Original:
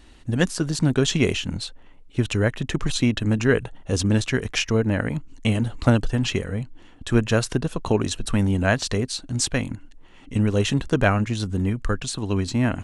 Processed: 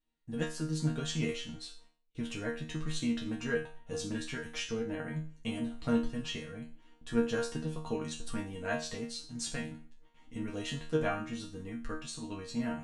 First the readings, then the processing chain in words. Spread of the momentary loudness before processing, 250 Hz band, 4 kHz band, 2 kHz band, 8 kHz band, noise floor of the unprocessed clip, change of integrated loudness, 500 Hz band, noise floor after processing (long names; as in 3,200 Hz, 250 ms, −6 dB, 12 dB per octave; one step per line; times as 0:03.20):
8 LU, −12.0 dB, −12.5 dB, −13.0 dB, −13.0 dB, −47 dBFS, −13.0 dB, −12.0 dB, −62 dBFS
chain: noise gate with hold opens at −38 dBFS
resonators tuned to a chord D#3 fifth, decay 0.39 s
level +2.5 dB